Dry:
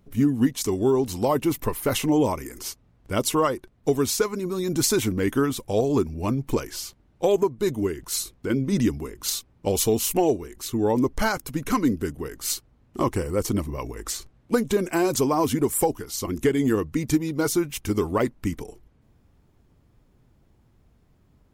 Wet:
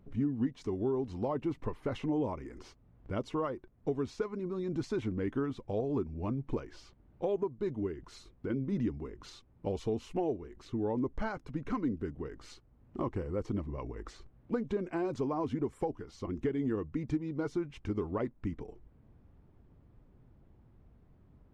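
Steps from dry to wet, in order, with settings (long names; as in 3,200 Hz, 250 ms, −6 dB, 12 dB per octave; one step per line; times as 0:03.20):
downward compressor 1.5 to 1, threshold −46 dBFS, peak gain reduction 11 dB
head-to-tape spacing loss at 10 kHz 33 dB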